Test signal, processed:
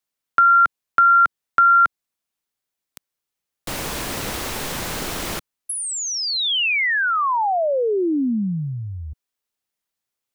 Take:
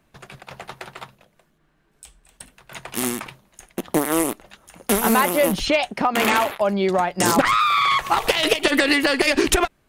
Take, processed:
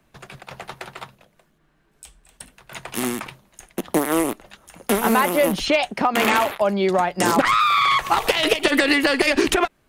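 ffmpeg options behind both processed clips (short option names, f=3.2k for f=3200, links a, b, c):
-filter_complex "[0:a]acrossover=split=180|3500[a][b][c];[a]acompressor=threshold=-35dB:ratio=4[d];[b]acompressor=threshold=-13dB:ratio=4[e];[c]acompressor=threshold=-28dB:ratio=4[f];[d][e][f]amix=inputs=3:normalize=0,volume=1dB"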